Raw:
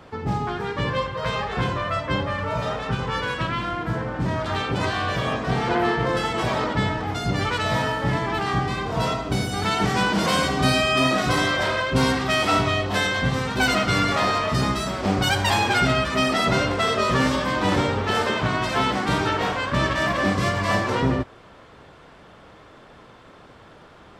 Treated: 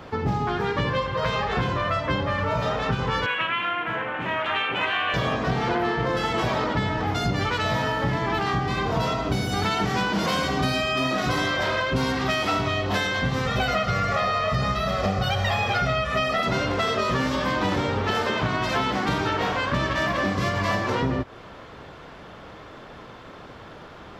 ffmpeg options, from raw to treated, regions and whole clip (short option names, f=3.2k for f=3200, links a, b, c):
-filter_complex "[0:a]asettb=1/sr,asplit=3[a][b][c];[a]atrim=end=3.264[d];[b]atrim=start=3.26:end=5.14,asetpts=PTS-STARTPTS,afade=t=in:d=0.004:c=qsin,afade=t=out:st=1.876:d=0.004:c=qsin,highpass=f=1k:p=1,highshelf=f=3.7k:t=q:w=3:g=-10[e];[c]atrim=start=5.136[f];[d][e]acrossfade=d=0.004:c1=hsin:c2=qsin[g];[g][f]acrossfade=d=0.004:c1=qsin:c2=hsin,asettb=1/sr,asplit=3[h][i][j];[h]atrim=end=13.464[k];[i]atrim=start=13.46:end=16.43,asetpts=PTS-STARTPTS,afade=t=in:d=0.004:c=qsin,afade=t=out:st=2.966:d=0.004:c=qsin,acrossover=split=3700[l][m];[m]acompressor=threshold=-38dB:ratio=4:attack=1:release=60[n];[l][n]amix=inputs=2:normalize=0,aecho=1:1:1.6:0.79,atrim=end_sample=130977[o];[j]atrim=start=16.426[p];[k][o]acrossfade=d=0.004:c1=hsin:c2=qsin[q];[q][p]acrossfade=d=0.004:c1=qsin:c2=hsin,equalizer=f=8.7k:t=o:w=0.27:g=-13,acompressor=threshold=-26dB:ratio=6,volume=5dB"